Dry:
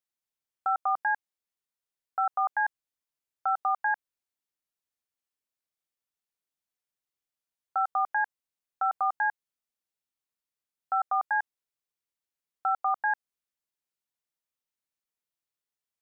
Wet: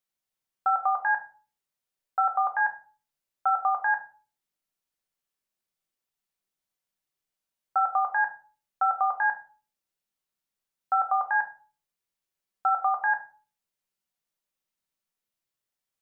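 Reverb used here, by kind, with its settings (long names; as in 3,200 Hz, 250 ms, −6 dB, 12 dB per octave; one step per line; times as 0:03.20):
rectangular room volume 290 cubic metres, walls furnished, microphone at 1.1 metres
level +2 dB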